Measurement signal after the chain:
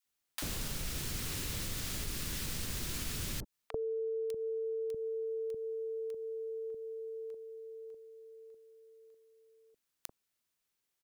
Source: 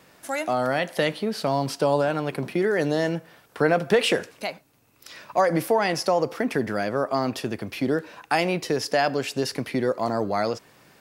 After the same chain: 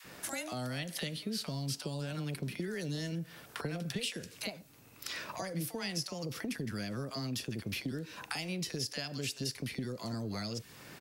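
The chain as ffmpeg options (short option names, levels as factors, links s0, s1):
-filter_complex "[0:a]acrossover=split=200|3000[s0][s1][s2];[s1]acompressor=threshold=0.00708:ratio=2.5[s3];[s0][s3][s2]amix=inputs=3:normalize=0,adynamicequalizer=threshold=0.00282:dfrequency=740:dqfactor=1.3:tfrequency=740:tqfactor=1.3:attack=5:release=100:ratio=0.375:range=3:mode=cutabove:tftype=bell,acompressor=threshold=0.0112:ratio=6,acrossover=split=810[s4][s5];[s4]adelay=40[s6];[s6][s5]amix=inputs=2:normalize=0,volume=1.68"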